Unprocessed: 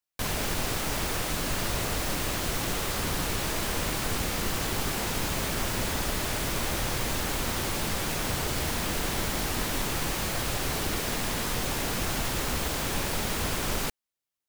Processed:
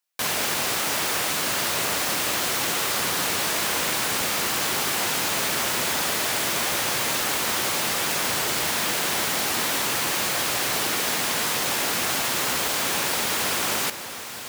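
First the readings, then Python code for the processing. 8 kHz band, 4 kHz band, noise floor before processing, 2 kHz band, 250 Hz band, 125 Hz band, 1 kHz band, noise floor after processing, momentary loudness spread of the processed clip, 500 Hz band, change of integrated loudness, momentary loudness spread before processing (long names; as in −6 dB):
+8.0 dB, +7.5 dB, below −85 dBFS, +7.5 dB, −0.5 dB, −6.5 dB, +6.0 dB, −35 dBFS, 0 LU, +3.5 dB, +6.5 dB, 0 LU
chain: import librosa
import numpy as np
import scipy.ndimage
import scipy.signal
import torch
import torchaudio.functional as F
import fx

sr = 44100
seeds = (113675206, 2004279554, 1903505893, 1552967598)

y = scipy.signal.sosfilt(scipy.signal.butter(2, 130.0, 'highpass', fs=sr, output='sos'), x)
y = fx.low_shelf(y, sr, hz=430.0, db=-11.0)
y = fx.echo_alternate(y, sr, ms=310, hz=2400.0, feedback_pct=90, wet_db=-14.0)
y = F.gain(torch.from_numpy(y), 7.5).numpy()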